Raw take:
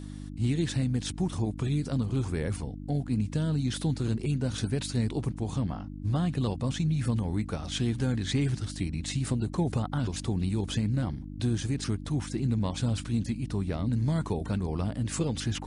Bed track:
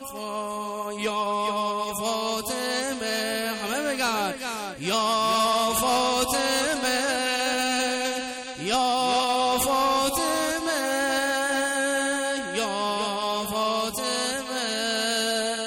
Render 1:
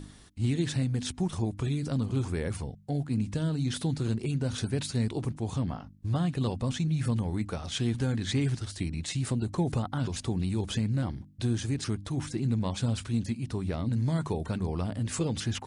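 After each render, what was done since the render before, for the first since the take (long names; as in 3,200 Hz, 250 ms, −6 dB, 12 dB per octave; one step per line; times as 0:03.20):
hum removal 50 Hz, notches 6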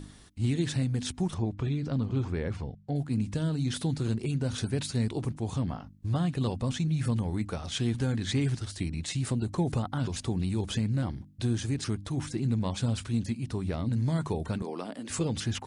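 0:01.34–0:02.96: high-frequency loss of the air 140 metres
0:14.62–0:15.10: high-pass filter 240 Hz 24 dB per octave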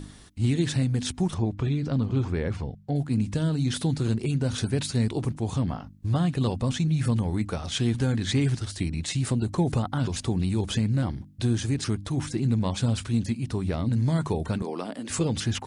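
level +4 dB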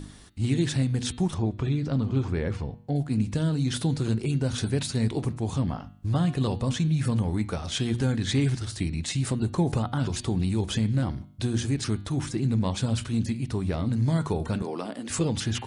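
hum removal 119.5 Hz, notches 38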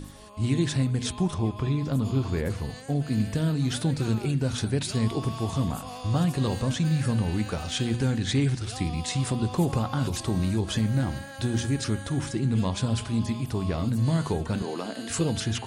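mix in bed track −17.5 dB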